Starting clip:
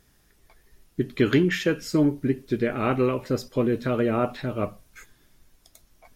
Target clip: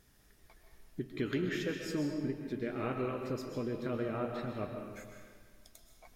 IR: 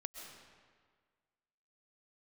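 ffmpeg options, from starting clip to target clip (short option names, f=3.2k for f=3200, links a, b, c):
-filter_complex "[0:a]acompressor=threshold=-46dB:ratio=1.5[a];[1:a]atrim=start_sample=2205[b];[a][b]afir=irnorm=-1:irlink=0"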